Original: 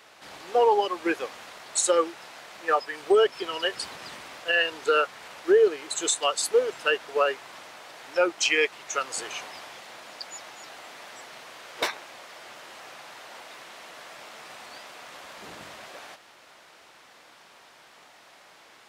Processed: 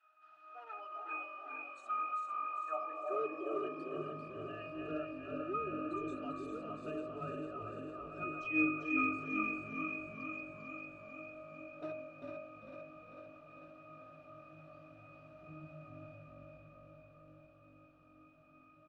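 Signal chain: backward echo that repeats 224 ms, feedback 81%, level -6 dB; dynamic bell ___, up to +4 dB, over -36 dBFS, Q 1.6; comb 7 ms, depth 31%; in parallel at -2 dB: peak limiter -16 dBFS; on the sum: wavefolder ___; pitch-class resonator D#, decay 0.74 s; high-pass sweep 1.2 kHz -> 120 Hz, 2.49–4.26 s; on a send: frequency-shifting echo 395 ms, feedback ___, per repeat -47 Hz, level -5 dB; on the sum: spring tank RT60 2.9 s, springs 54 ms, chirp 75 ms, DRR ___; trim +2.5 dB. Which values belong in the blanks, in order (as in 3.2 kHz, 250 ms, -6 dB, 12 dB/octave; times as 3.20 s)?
460 Hz, -8.5 dBFS, 32%, 16.5 dB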